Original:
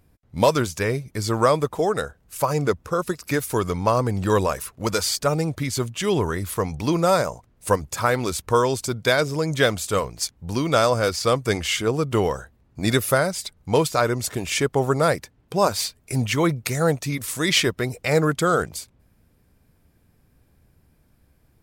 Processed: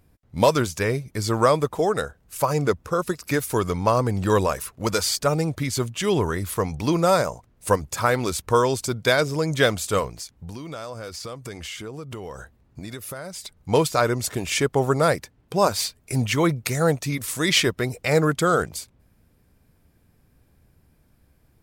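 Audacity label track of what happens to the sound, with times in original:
10.110000	13.690000	compressor, threshold -32 dBFS

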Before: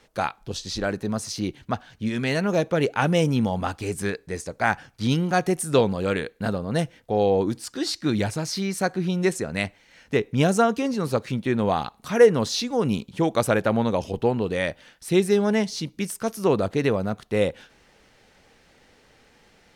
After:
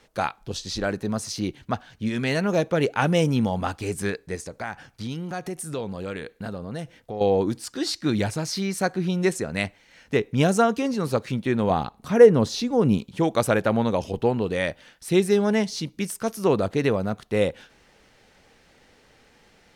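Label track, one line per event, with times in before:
4.350000	7.210000	compressor 2.5:1, threshold -32 dBFS
11.700000	12.980000	tilt shelf lows +4.5 dB, about 870 Hz

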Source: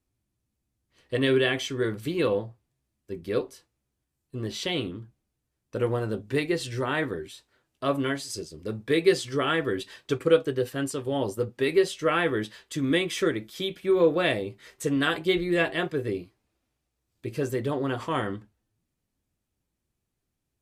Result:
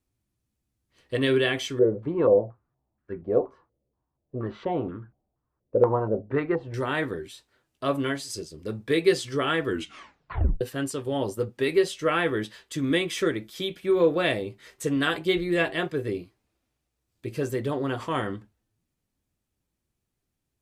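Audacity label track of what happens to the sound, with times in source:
1.790000	6.740000	stepped low-pass 4.2 Hz 530–1500 Hz
9.670000	9.670000	tape stop 0.94 s

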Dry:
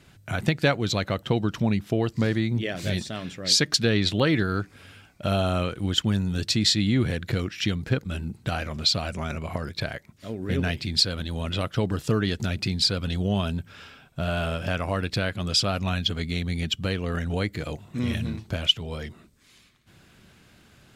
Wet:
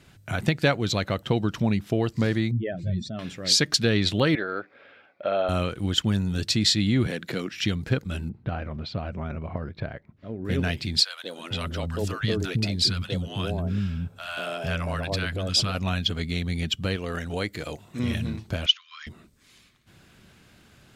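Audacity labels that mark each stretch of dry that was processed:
2.510000	3.190000	spectral contrast raised exponent 2.1
4.350000	5.490000	speaker cabinet 430–3200 Hz, peaks and dips at 550 Hz +9 dB, 1000 Hz -4 dB, 2900 Hz -8 dB
7.070000	7.510000	HPF 170 Hz 24 dB/oct
8.290000	10.450000	tape spacing loss at 10 kHz 41 dB
11.040000	15.750000	three bands offset in time highs, mids, lows 0.19/0.46 s, splits 260/830 Hz
16.960000	18.000000	tone controls bass -6 dB, treble +3 dB
18.660000	19.070000	brick-wall FIR band-pass 1000–6900 Hz

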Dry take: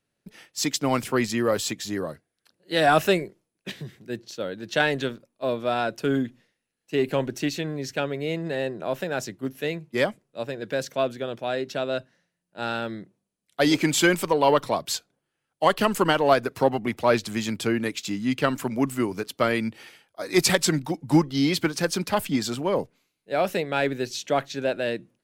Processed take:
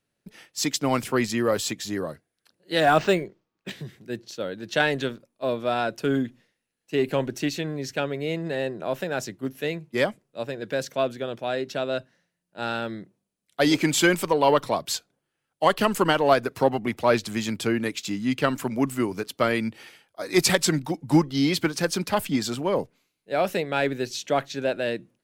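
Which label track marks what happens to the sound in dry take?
2.800000	3.710000	decimation joined by straight lines rate divided by 4×

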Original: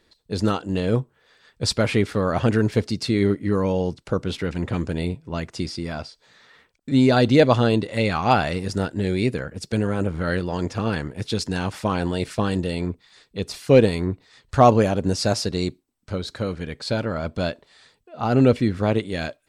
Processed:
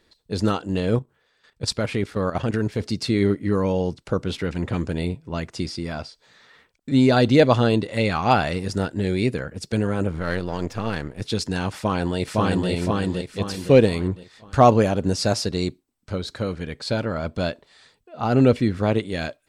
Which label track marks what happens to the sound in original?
0.970000	2.810000	level quantiser steps of 11 dB
10.190000	11.220000	half-wave gain negative side -7 dB
11.760000	12.700000	echo throw 0.51 s, feedback 40%, level -1 dB

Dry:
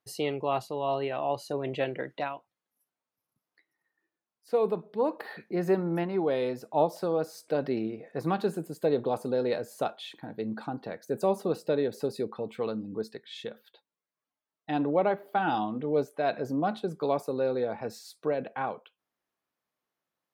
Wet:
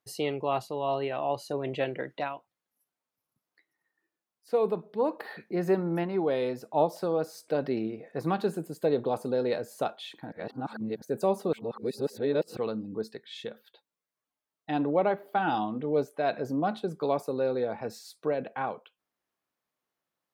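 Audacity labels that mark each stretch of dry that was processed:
10.320000	11.020000	reverse
11.530000	12.570000	reverse

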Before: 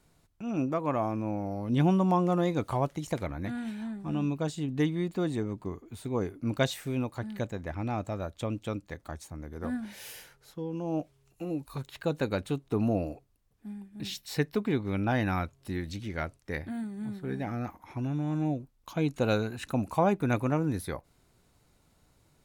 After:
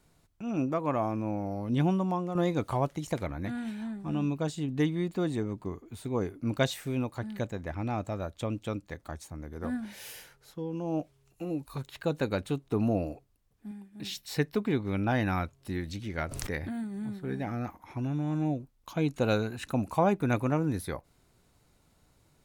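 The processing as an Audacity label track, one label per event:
1.600000	2.350000	fade out, to -9 dB
13.710000	14.160000	low shelf 120 Hz -10.5 dB
16.180000	17.100000	backwards sustainer at most 35 dB/s

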